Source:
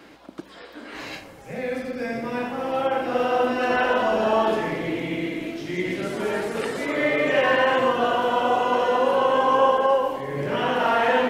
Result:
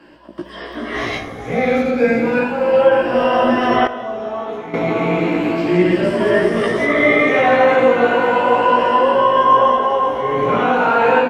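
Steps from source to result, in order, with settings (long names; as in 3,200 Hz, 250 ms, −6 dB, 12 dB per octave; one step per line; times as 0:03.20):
rippled gain that drifts along the octave scale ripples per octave 1.3, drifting +0.34 Hz, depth 11 dB
low-pass filter 2,400 Hz 6 dB per octave
double-tracking delay 17 ms −2 dB
feedback delay with all-pass diffusion 631 ms, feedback 44%, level −10 dB
automatic gain control gain up to 12.5 dB
0:03.87–0:04.74: noise gate −5 dBFS, range −12 dB
level −1 dB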